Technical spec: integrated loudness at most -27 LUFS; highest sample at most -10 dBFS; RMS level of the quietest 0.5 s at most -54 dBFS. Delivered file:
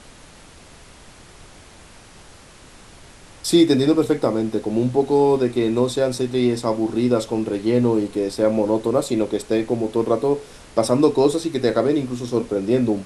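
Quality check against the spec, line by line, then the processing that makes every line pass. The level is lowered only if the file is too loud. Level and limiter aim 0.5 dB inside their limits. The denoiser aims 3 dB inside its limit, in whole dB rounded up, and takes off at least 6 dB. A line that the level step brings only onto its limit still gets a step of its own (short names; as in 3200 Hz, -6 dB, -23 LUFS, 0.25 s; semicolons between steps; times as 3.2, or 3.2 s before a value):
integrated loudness -20.0 LUFS: fail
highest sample -3.5 dBFS: fail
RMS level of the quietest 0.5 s -45 dBFS: fail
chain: denoiser 6 dB, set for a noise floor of -45 dBFS; gain -7.5 dB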